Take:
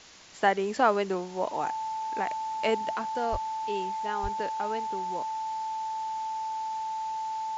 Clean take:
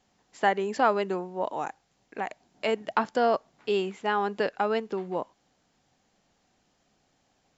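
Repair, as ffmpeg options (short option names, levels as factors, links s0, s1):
-filter_complex "[0:a]bandreject=f=880:w=30,asplit=3[s0][s1][s2];[s0]afade=t=out:st=3.31:d=0.02[s3];[s1]highpass=f=140:w=0.5412,highpass=f=140:w=1.3066,afade=t=in:st=3.31:d=0.02,afade=t=out:st=3.43:d=0.02[s4];[s2]afade=t=in:st=3.43:d=0.02[s5];[s3][s4][s5]amix=inputs=3:normalize=0,asplit=3[s6][s7][s8];[s6]afade=t=out:st=4.22:d=0.02[s9];[s7]highpass=f=140:w=0.5412,highpass=f=140:w=1.3066,afade=t=in:st=4.22:d=0.02,afade=t=out:st=4.34:d=0.02[s10];[s8]afade=t=in:st=4.34:d=0.02[s11];[s9][s10][s11]amix=inputs=3:normalize=0,afwtdn=0.004,asetnsamples=n=441:p=0,asendcmd='2.93 volume volume 8dB',volume=1"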